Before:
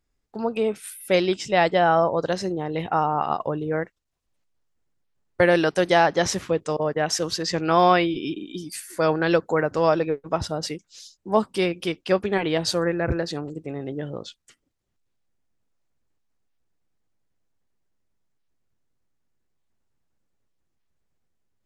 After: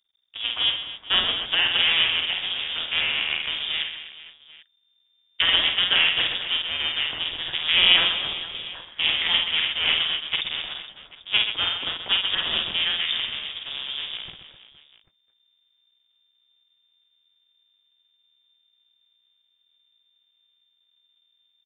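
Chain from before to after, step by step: cycle switcher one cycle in 2, muted; reverse bouncing-ball echo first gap 50 ms, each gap 1.6×, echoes 5; frequency inversion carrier 3.6 kHz; trim -1 dB

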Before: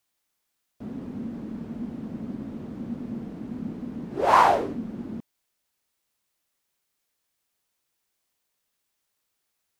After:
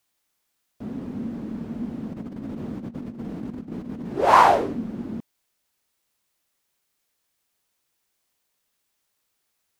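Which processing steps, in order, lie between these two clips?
2.12–4.13 s: compressor with a negative ratio -36 dBFS, ratio -0.5; trim +3 dB

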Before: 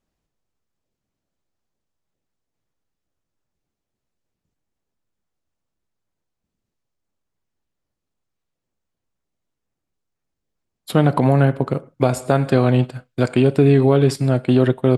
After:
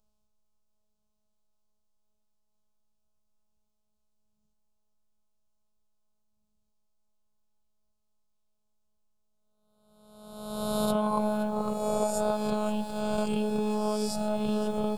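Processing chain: reverse spectral sustain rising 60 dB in 1.34 s; bass shelf 170 Hz +6 dB; compression 2.5:1, threshold -20 dBFS, peak gain reduction 9.5 dB; robot voice 212 Hz; static phaser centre 780 Hz, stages 4; bit-crushed delay 520 ms, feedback 80%, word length 8-bit, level -14 dB

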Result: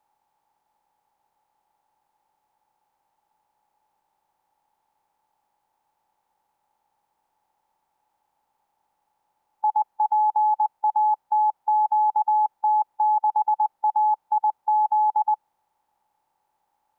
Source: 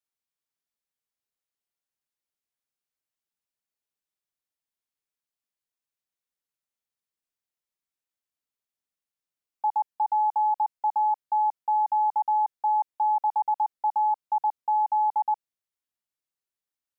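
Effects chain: spectral levelling over time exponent 0.6; trim +3 dB

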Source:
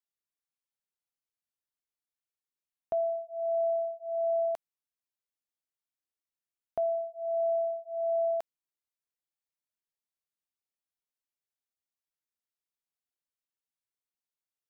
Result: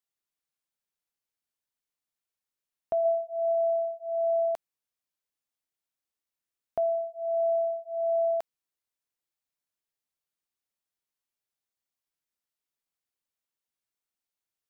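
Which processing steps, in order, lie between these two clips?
3.04–3.52 s: peaking EQ 590 Hz +13 dB -> +4.5 dB 0.25 oct; trim +2.5 dB

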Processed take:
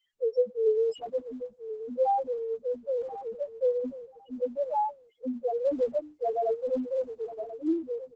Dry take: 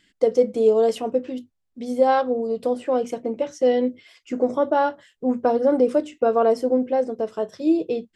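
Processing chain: tilt EQ +2.5 dB/octave; feedback delay 1035 ms, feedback 16%, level -13 dB; loudest bins only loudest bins 1; Opus 12 kbps 48 kHz

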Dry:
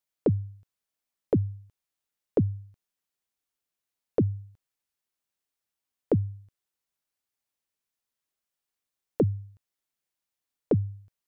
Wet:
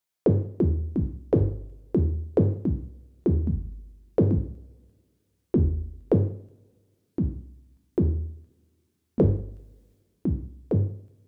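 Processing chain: 9.44–10.78 s: transient shaper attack -6 dB, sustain +6 dB; ever faster or slower copies 272 ms, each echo -4 st, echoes 3; two-slope reverb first 0.55 s, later 2.1 s, from -27 dB, DRR 4 dB; trim +2 dB

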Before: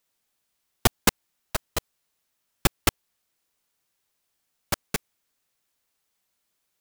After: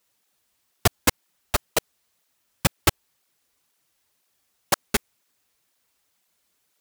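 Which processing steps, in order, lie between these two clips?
loudness maximiser +8.5 dB; cancelling through-zero flanger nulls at 2 Hz, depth 7.7 ms

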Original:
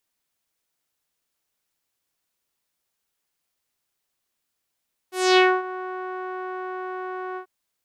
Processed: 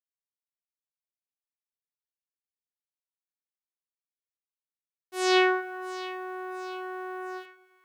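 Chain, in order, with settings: word length cut 10-bit, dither none; two-band feedback delay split 1.8 kHz, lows 129 ms, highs 682 ms, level -15 dB; trim -4.5 dB

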